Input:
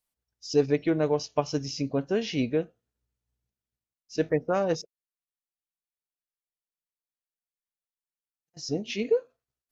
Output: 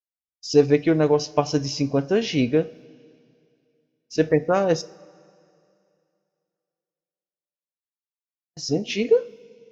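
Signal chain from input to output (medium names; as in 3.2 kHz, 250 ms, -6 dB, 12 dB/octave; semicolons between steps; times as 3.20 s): expander -51 dBFS; two-slope reverb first 0.39 s, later 2.6 s, from -16 dB, DRR 14 dB; trim +6 dB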